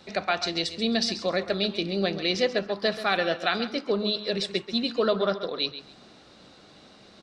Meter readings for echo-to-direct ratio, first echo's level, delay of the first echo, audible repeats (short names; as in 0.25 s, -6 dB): -12.5 dB, -12.5 dB, 0.134 s, 2